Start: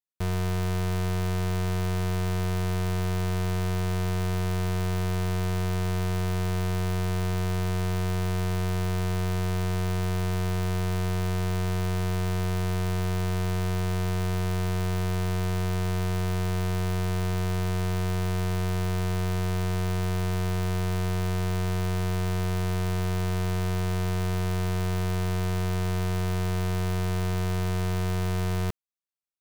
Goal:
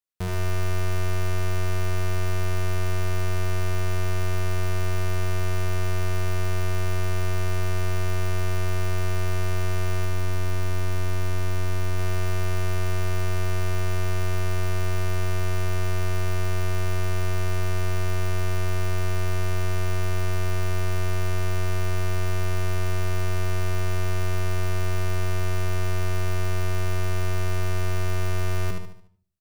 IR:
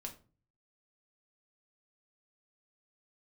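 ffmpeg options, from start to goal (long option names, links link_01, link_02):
-filter_complex "[0:a]asplit=2[link_01][link_02];[1:a]atrim=start_sample=2205,lowpass=8000,adelay=79[link_03];[link_02][link_03]afir=irnorm=-1:irlink=0,volume=-7dB[link_04];[link_01][link_04]amix=inputs=2:normalize=0,asettb=1/sr,asplit=3[link_05][link_06][link_07];[link_05]atrim=end=10.054[link_08];[link_06]atrim=start=10.05:end=11.99,asetpts=PTS-STARTPTS,afade=type=in:duration=0.004:curve=qsin,afade=type=out:start_time=1.936:duration=0.004:curve=qsin,aeval=exprs='clip(val(0),-1,0.0251)':channel_layout=same[link_09];[link_07]atrim=start=11.986[link_10];[link_08][link_09]acrossfade=duration=0.004:curve1=hsin:curve2=qsin[link_11];[link_11][link_10]acrossfade=duration=0.004:curve1=qsin:curve2=hsin,aecho=1:1:73|146|219|292|365:0.501|0.21|0.0884|0.0371|0.0156"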